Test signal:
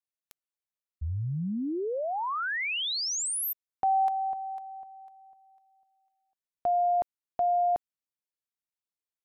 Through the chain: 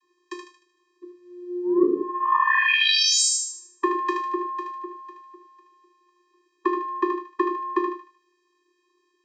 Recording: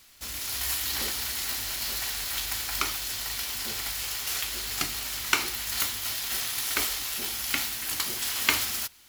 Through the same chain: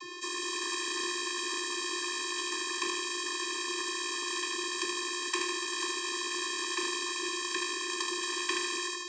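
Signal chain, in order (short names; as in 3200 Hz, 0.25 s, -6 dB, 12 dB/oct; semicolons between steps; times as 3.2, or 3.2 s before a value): high shelf 2800 Hz -9.5 dB; on a send: thinning echo 76 ms, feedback 45%, high-pass 1100 Hz, level -5 dB; on the sum: non-linear reverb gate 0.13 s falling, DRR 3 dB; vocoder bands 32, square 355 Hz; spectral compressor 4:1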